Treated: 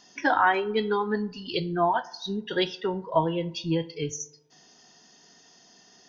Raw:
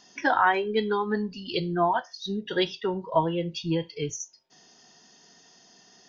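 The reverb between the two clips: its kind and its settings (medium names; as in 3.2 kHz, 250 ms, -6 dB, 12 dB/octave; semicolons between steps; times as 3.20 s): FDN reverb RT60 0.86 s, low-frequency decay 1.05×, high-frequency decay 0.5×, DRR 17 dB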